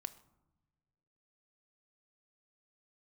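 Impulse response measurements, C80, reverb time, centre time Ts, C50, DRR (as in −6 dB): 18.5 dB, non-exponential decay, 4 ms, 16.0 dB, 9.0 dB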